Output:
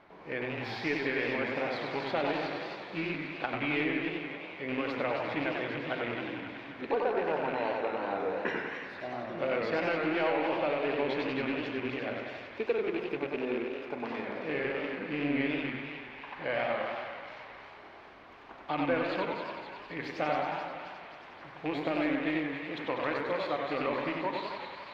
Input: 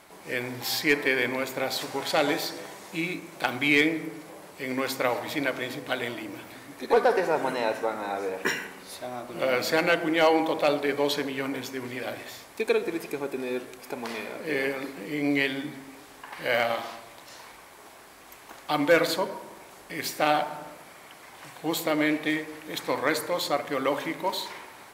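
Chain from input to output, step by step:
loose part that buzzes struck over −37 dBFS, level −20 dBFS
high-shelf EQ 6,300 Hz −11.5 dB
downward compressor 2.5 to 1, threshold −26 dBFS, peak gain reduction 7.5 dB
high-frequency loss of the air 280 metres
on a send: feedback echo with a high-pass in the loop 265 ms, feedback 68%, high-pass 1,100 Hz, level −6 dB
on the sum: feedback echo with a swinging delay time 95 ms, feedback 56%, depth 165 cents, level −4 dB
level −2.5 dB

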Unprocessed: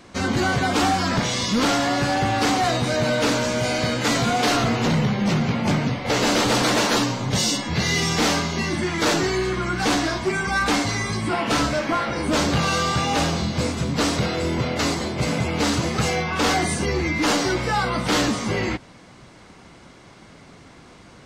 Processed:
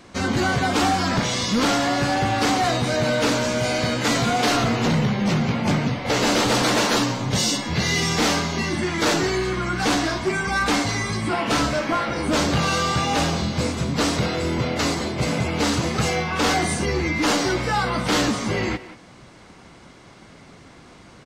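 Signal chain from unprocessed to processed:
far-end echo of a speakerphone 180 ms, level −13 dB

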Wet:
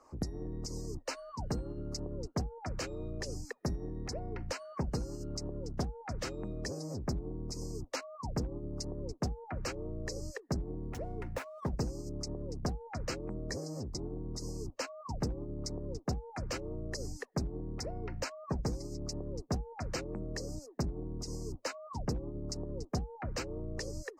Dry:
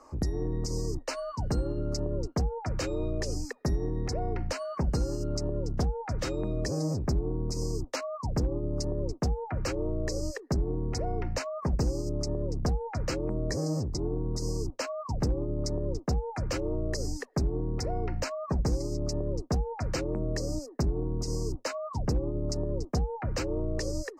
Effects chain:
0:10.83–0:11.70: running median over 9 samples
harmonic and percussive parts rebalanced harmonic −9 dB
level −3.5 dB

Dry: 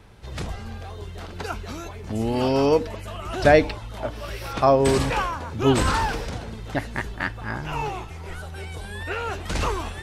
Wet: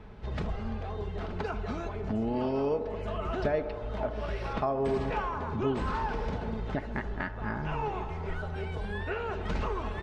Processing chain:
downward compressor 4 to 1, threshold −31 dBFS, peak gain reduction 17.5 dB
head-to-tape spacing loss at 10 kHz 27 dB
comb filter 4.7 ms, depth 37%
on a send: delay with a band-pass on its return 68 ms, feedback 83%, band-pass 700 Hz, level −12.5 dB
on the sum: level +2.5 dB

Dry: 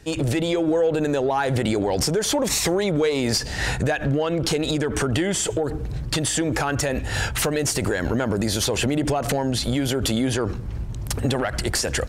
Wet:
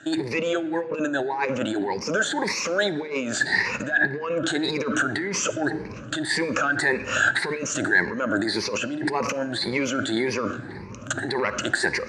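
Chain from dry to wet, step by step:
rippled gain that drifts along the octave scale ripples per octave 0.85, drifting +1.8 Hz, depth 19 dB
compressor whose output falls as the input rises −22 dBFS, ratio −1
loudspeaker in its box 270–6,300 Hz, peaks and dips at 460 Hz −5 dB, 740 Hz −6 dB, 1,600 Hz +7 dB, 3,200 Hz −9 dB, 5,300 Hz −7 dB
on a send: convolution reverb RT60 1.8 s, pre-delay 10 ms, DRR 13 dB

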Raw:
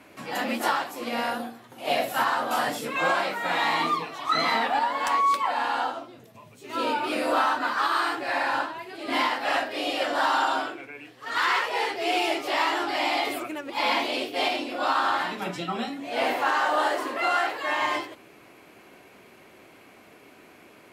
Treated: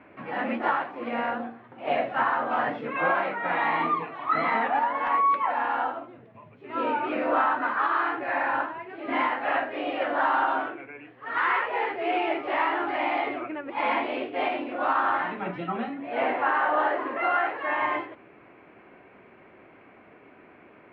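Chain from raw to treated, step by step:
inverse Chebyshev low-pass filter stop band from 11,000 Hz, stop band 80 dB

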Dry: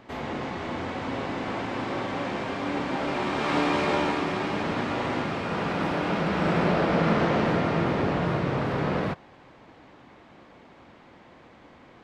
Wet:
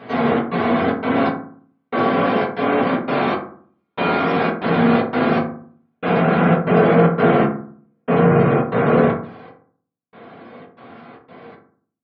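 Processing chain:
gate on every frequency bin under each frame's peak −30 dB strong
high-pass filter 150 Hz 12 dB per octave
in parallel at +2.5 dB: speech leveller 0.5 s
on the sum: gate pattern "xxx.xxx.xx.....x" 117 BPM −60 dB
convolution reverb RT60 0.50 s, pre-delay 3 ms, DRR −8 dB
level −6 dB

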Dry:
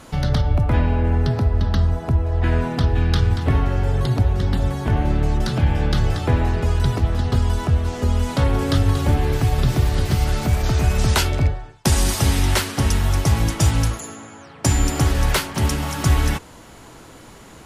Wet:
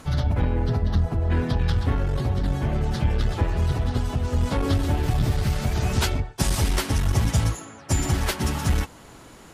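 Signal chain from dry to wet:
time stretch by phase vocoder 0.54×
saturating transformer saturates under 120 Hz

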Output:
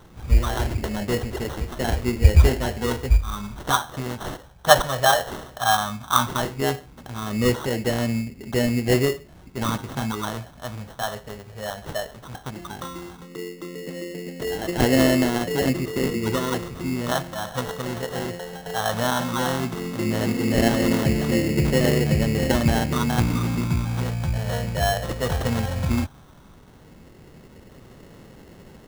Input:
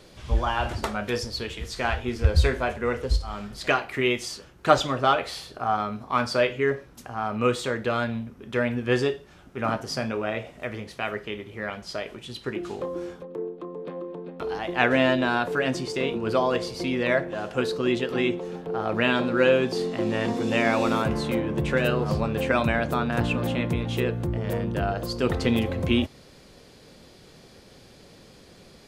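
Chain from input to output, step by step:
all-pass phaser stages 4, 0.15 Hz, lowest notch 310–1,300 Hz
sample-rate reduction 2,400 Hz, jitter 0%
level +5.5 dB

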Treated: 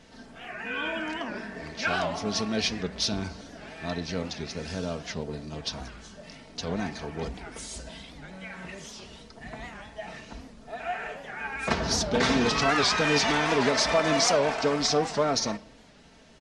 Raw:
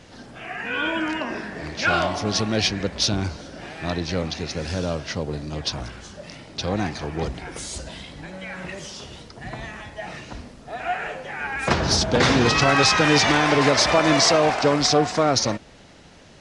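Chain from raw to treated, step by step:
comb filter 4.5 ms, depth 49%
on a send at −16 dB: convolution reverb RT60 0.85 s, pre-delay 3 ms
on the sum: wow of a warped record 78 rpm, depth 160 cents
level −7 dB

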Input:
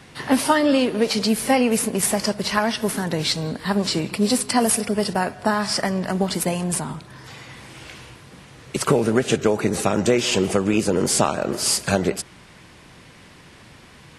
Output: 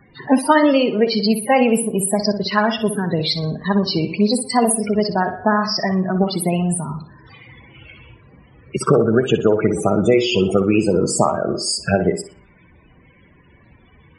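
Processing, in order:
spectral peaks only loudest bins 32
tape delay 61 ms, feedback 50%, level −8 dB, low-pass 3,500 Hz
noise reduction from a noise print of the clip's start 7 dB
level +4 dB

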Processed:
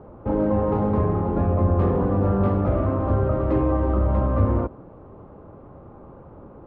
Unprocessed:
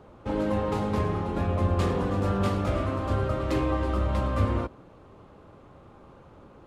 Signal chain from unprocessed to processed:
low-pass filter 1,000 Hz 12 dB per octave
in parallel at −1 dB: brickwall limiter −23 dBFS, peak gain reduction 8.5 dB
on the sum: level +2 dB

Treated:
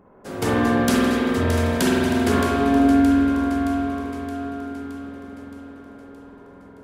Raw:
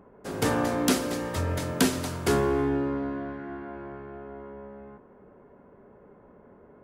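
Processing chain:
delay that swaps between a low-pass and a high-pass 310 ms, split 1,300 Hz, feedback 75%, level −6 dB
spring reverb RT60 2.3 s, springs 47 ms, chirp 30 ms, DRR −4.5 dB

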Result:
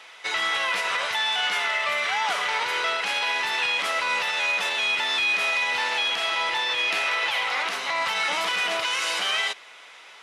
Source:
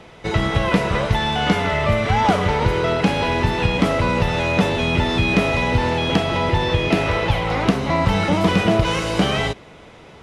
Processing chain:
high-pass filter 1,400 Hz 12 dB per octave
brickwall limiter −20 dBFS, peak gain reduction 10.5 dB
level +4 dB

